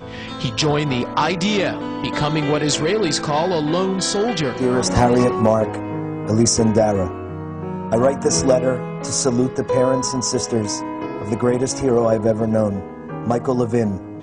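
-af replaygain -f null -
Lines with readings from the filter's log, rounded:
track_gain = -0.0 dB
track_peak = 0.430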